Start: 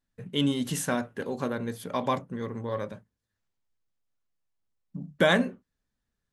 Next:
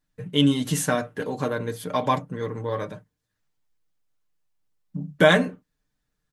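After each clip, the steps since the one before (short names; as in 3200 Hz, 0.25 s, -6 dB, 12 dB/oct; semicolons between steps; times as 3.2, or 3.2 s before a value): comb 6.6 ms, depth 58%; gain +3.5 dB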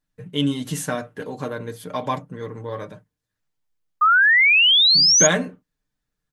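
painted sound rise, 4.01–5.27, 1200–6800 Hz -12 dBFS; gain -2.5 dB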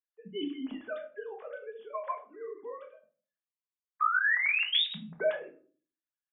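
sine-wave speech; compressor 2:1, threshold -26 dBFS, peak gain reduction 10.5 dB; shoebox room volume 280 m³, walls furnished, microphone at 1.4 m; gain -8 dB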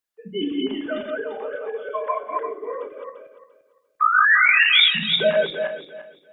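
regenerating reverse delay 0.172 s, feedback 47%, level -0.5 dB; gain +9 dB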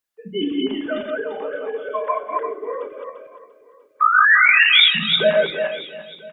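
echo 0.989 s -23 dB; gain +2.5 dB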